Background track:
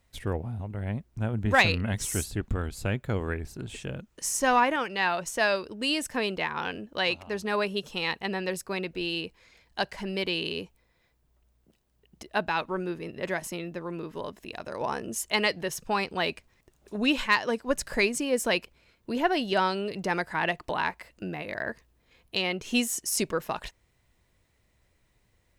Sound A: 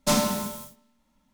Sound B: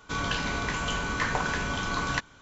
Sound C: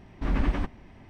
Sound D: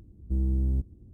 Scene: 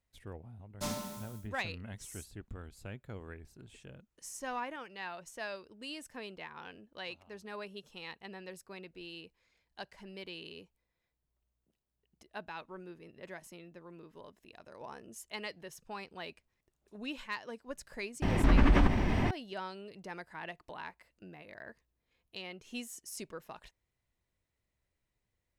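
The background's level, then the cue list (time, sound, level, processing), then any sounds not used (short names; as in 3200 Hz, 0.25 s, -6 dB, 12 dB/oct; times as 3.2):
background track -16 dB
0.74 add A -15 dB, fades 0.10 s
18.22 add C -0.5 dB + fast leveller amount 70%
not used: B, D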